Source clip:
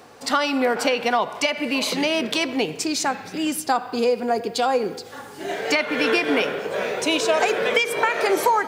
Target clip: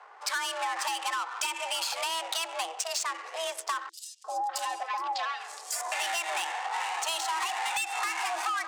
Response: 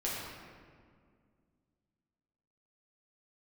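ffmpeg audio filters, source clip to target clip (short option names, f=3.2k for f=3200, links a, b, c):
-filter_complex "[0:a]asoftclip=type=tanh:threshold=-16.5dB,adynamicsmooth=sensitivity=5:basefreq=1k,equalizer=f=125:t=o:w=1:g=-5,equalizer=f=250:t=o:w=1:g=-11,equalizer=f=8k:t=o:w=1:g=10,asettb=1/sr,asplit=3[a][b][c];[a]atrim=end=3.894[d];[b]atrim=start=3.89:end=5.92,asetpts=PTS-STARTPTS,afade=t=in:d=0.004:c=qsin,afade=t=out:st=2.026:d=0.004:c=qsin,acrossover=split=700|4600[e][f][g];[e]adelay=350[h];[f]adelay=600[i];[h][i][g]amix=inputs=3:normalize=0,atrim=end_sample=89523[j];[c]atrim=start=5.916[k];[d][j]acrossfade=d=0.004:c1=hsin:c2=qsin[l];[l][k]acrossfade=d=0.004:c1=qsin:c2=hsin,afreqshift=330,asoftclip=type=hard:threshold=-16.5dB,lowshelf=f=140:g=-11,acompressor=threshold=-29dB:ratio=4"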